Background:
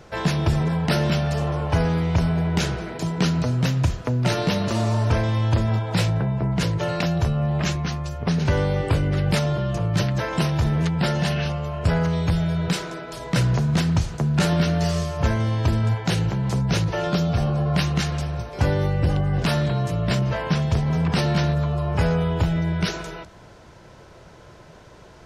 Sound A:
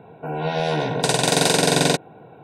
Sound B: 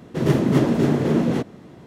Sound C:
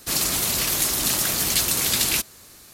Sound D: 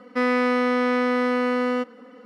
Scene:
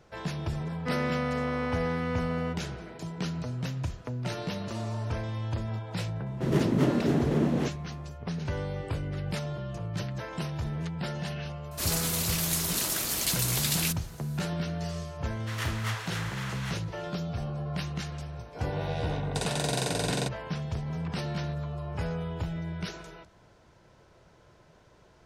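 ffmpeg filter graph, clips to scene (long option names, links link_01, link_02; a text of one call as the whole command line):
ffmpeg -i bed.wav -i cue0.wav -i cue1.wav -i cue2.wav -i cue3.wav -filter_complex "[2:a]asplit=2[link_01][link_02];[0:a]volume=-12dB[link_03];[link_02]highpass=frequency=1200:width=0.5412,highpass=frequency=1200:width=1.3066[link_04];[4:a]atrim=end=2.25,asetpts=PTS-STARTPTS,volume=-10dB,afade=type=in:duration=0.004:curve=hsin,afade=type=out:start_time=2.246:duration=0.004:curve=hsin,adelay=700[link_05];[link_01]atrim=end=1.86,asetpts=PTS-STARTPTS,volume=-7dB,afade=type=in:duration=0.004:curve=hsin,afade=type=out:start_time=1.856:duration=0.004:curve=hsin,adelay=276066S[link_06];[3:a]atrim=end=2.73,asetpts=PTS-STARTPTS,volume=-7.5dB,afade=type=in:duration=0.004:curve=hsin,afade=type=out:start_time=2.726:duration=0.004:curve=hsin,adelay=11710[link_07];[link_04]atrim=end=1.86,asetpts=PTS-STARTPTS,volume=-1dB,afade=type=in:duration=0.004:curve=hsin,afade=type=out:start_time=1.856:duration=0.004:curve=hsin,adelay=15320[link_08];[1:a]atrim=end=2.43,asetpts=PTS-STARTPTS,volume=-13dB,afade=type=in:duration=0.004:curve=hsin,afade=type=out:start_time=2.426:duration=0.004:curve=hsin,adelay=18320[link_09];[link_03][link_05][link_06][link_07][link_08][link_09]amix=inputs=6:normalize=0" out.wav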